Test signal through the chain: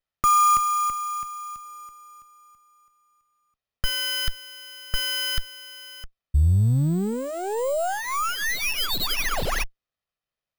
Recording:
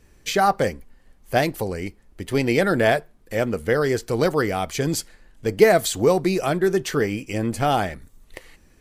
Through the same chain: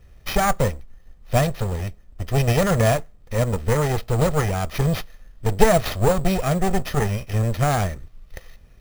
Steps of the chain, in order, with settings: minimum comb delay 1.6 ms; low shelf 200 Hz +10 dB; sample-rate reducer 8100 Hz, jitter 0%; gain -1 dB

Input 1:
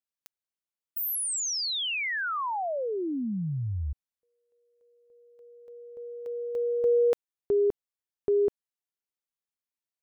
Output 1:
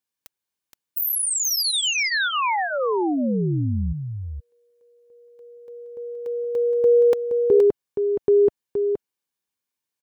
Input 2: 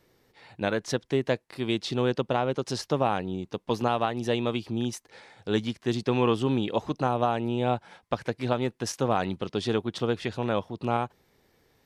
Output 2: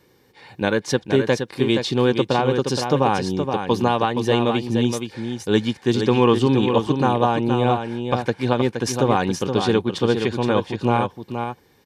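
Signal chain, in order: notch comb 660 Hz; echo 0.471 s -6.5 dB; gain +8 dB

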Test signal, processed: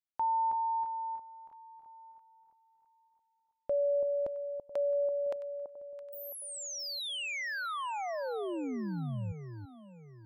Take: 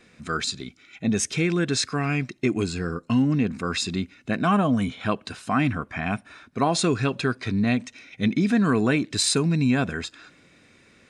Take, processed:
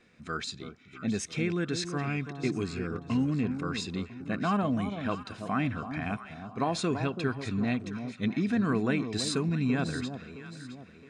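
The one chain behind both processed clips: high shelf 7900 Hz -11 dB; on a send: echo with dull and thin repeats by turns 0.333 s, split 1000 Hz, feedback 61%, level -8 dB; on the sum: gain -7 dB

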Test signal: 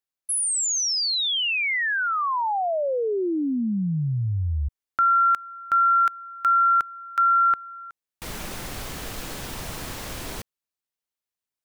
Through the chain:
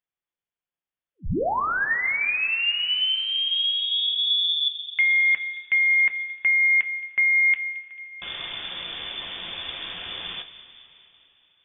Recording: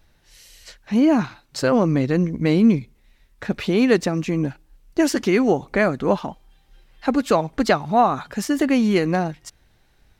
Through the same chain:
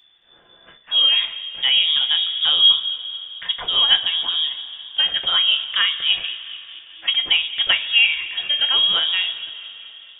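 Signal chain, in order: inverted band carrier 3500 Hz; thin delay 0.221 s, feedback 62%, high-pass 2400 Hz, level -15 dB; two-slope reverb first 0.24 s, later 3.4 s, from -18 dB, DRR 5.5 dB; gain -1 dB

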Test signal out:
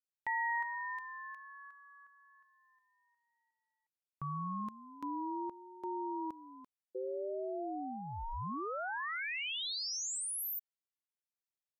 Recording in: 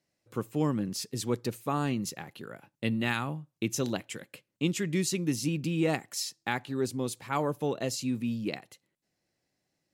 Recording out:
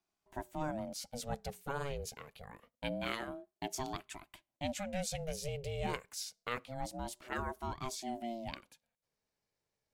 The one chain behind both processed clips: dynamic EQ 320 Hz, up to -5 dB, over -45 dBFS, Q 2.4; ring modulator with a swept carrier 400 Hz, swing 30%, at 0.26 Hz; gain -5 dB

